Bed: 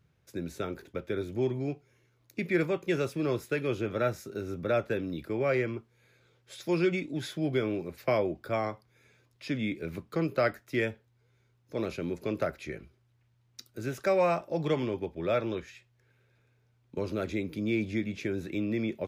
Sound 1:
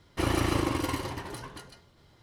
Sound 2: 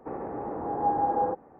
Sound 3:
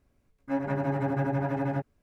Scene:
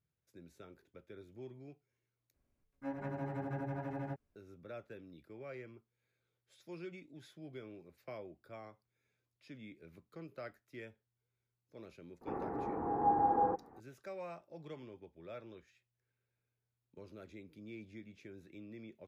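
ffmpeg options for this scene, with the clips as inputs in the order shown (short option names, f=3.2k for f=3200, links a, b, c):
-filter_complex "[0:a]volume=-20dB[a];[2:a]equalizer=f=580:t=o:w=0.29:g=-9.5[b];[a]asplit=2[c][d];[c]atrim=end=2.344[e];[3:a]atrim=end=2.02,asetpts=PTS-STARTPTS,volume=-12dB[f];[d]atrim=start=4.356[g];[b]atrim=end=1.59,asetpts=PTS-STARTPTS,volume=-3.5dB,afade=t=in:d=0.004:c=hsin,afade=t=out:st=1.586:d=0.004:c=hsin,adelay=12210[h];[e][f]acrossfade=d=0.004:c1=hsin:c2=hsin[i];[i][g]acrossfade=d=0.004:c1=hsin:c2=hsin[j];[j][h]amix=inputs=2:normalize=0"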